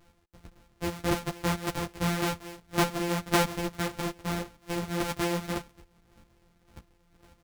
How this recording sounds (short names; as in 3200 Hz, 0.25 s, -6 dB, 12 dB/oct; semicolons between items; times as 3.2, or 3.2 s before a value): a buzz of ramps at a fixed pitch in blocks of 256 samples; chopped level 1.8 Hz, depth 60%, duty 20%; a shimmering, thickened sound